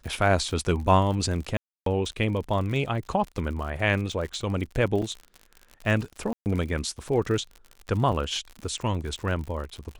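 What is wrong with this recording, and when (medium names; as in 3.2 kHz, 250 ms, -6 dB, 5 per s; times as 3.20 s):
crackle 57 per s -33 dBFS
1.57–1.86 s: dropout 293 ms
5.02–5.03 s: dropout 5 ms
6.33–6.46 s: dropout 129 ms
8.12 s: dropout 3.6 ms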